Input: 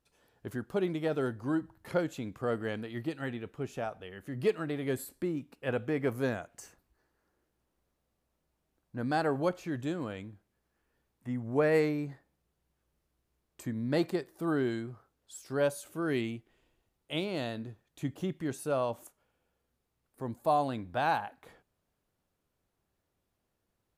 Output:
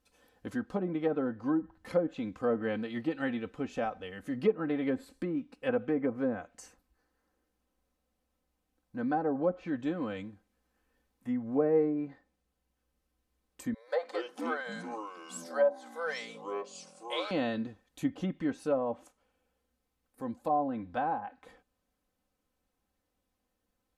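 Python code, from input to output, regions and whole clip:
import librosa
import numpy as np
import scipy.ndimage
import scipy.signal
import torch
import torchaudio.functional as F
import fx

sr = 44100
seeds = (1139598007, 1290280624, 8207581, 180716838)

y = fx.chain(x, sr, fx.brickwall_highpass(low_hz=450.0),
    fx.peak_eq(hz=2700.0, db=-11.0, octaves=0.34),
    fx.echo_pitch(ms=137, semitones=-6, count=3, db_per_echo=-6.0), at=(13.74, 17.31))
y = fx.env_lowpass_down(y, sr, base_hz=770.0, full_db=-25.5)
y = y + 0.68 * np.pad(y, (int(3.9 * sr / 1000.0), 0))[:len(y)]
y = fx.rider(y, sr, range_db=3, speed_s=2.0)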